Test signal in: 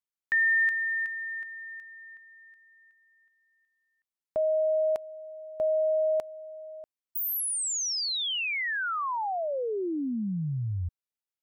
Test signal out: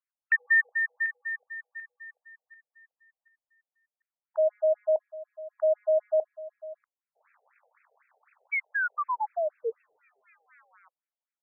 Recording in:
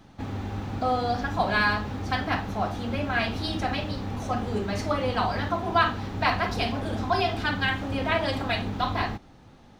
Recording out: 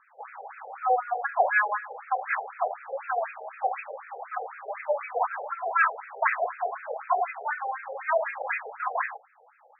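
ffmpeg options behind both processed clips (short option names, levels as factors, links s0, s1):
-af "acrusher=bits=7:mode=log:mix=0:aa=0.000001,afftfilt=real='re*between(b*sr/1024,570*pow(1900/570,0.5+0.5*sin(2*PI*4*pts/sr))/1.41,570*pow(1900/570,0.5+0.5*sin(2*PI*4*pts/sr))*1.41)':imag='im*between(b*sr/1024,570*pow(1900/570,0.5+0.5*sin(2*PI*4*pts/sr))/1.41,570*pow(1900/570,0.5+0.5*sin(2*PI*4*pts/sr))*1.41)':win_size=1024:overlap=0.75,volume=1.58"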